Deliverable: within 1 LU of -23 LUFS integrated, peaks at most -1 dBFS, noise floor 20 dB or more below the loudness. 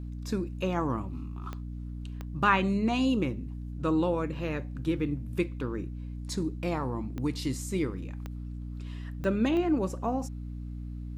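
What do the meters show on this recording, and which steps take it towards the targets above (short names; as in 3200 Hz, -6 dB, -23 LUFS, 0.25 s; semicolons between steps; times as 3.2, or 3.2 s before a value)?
clicks 6; hum 60 Hz; harmonics up to 300 Hz; hum level -35 dBFS; loudness -31.5 LUFS; peak -10.0 dBFS; loudness target -23.0 LUFS
-> de-click; notches 60/120/180/240/300 Hz; gain +8.5 dB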